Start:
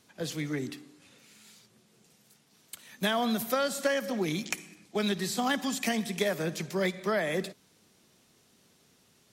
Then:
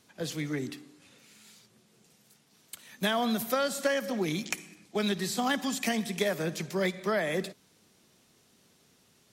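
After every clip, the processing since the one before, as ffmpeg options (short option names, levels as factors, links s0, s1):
-af anull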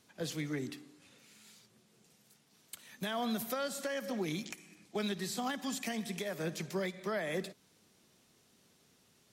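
-af "alimiter=limit=0.0708:level=0:latency=1:release=293,volume=0.668"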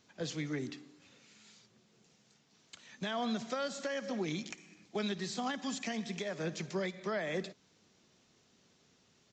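-af "aresample=16000,aresample=44100"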